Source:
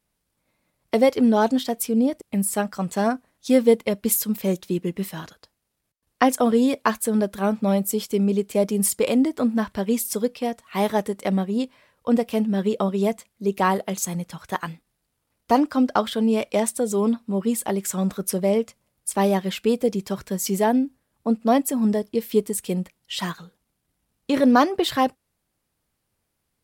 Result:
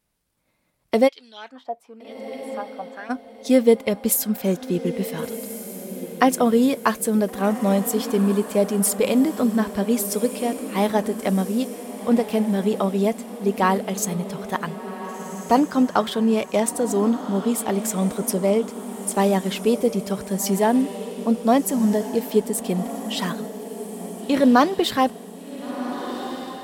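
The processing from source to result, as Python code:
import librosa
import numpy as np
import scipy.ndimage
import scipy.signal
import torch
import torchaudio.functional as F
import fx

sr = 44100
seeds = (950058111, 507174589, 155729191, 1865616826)

y = fx.filter_lfo_bandpass(x, sr, shape='sine', hz=1.0, low_hz=680.0, high_hz=4200.0, q=3.8, at=(1.07, 3.09), fade=0.02)
y = fx.echo_diffused(y, sr, ms=1447, feedback_pct=50, wet_db=-11.5)
y = F.gain(torch.from_numpy(y), 1.0).numpy()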